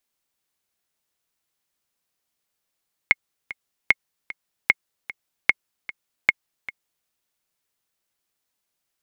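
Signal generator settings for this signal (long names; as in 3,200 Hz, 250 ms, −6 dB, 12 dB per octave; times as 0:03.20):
click track 151 BPM, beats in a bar 2, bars 5, 2,160 Hz, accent 17.5 dB −1 dBFS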